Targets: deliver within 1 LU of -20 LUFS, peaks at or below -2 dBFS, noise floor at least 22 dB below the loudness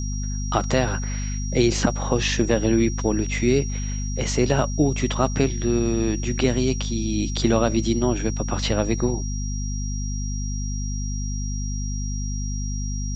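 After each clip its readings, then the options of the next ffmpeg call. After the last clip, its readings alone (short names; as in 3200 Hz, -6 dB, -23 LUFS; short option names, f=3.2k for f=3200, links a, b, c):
hum 50 Hz; harmonics up to 250 Hz; hum level -24 dBFS; steady tone 5700 Hz; tone level -35 dBFS; loudness -24.0 LUFS; peak -5.0 dBFS; loudness target -20.0 LUFS
-> -af "bandreject=f=50:t=h:w=4,bandreject=f=100:t=h:w=4,bandreject=f=150:t=h:w=4,bandreject=f=200:t=h:w=4,bandreject=f=250:t=h:w=4"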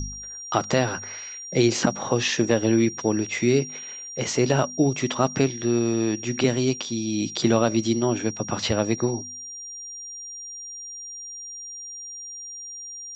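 hum none; steady tone 5700 Hz; tone level -35 dBFS
-> -af "bandreject=f=5.7k:w=30"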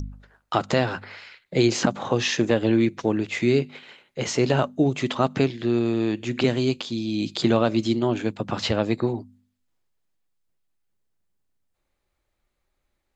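steady tone none; loudness -23.5 LUFS; peak -4.5 dBFS; loudness target -20.0 LUFS
-> -af "volume=3.5dB,alimiter=limit=-2dB:level=0:latency=1"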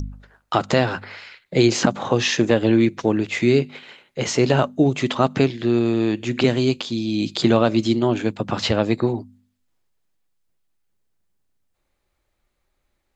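loudness -20.0 LUFS; peak -2.0 dBFS; noise floor -73 dBFS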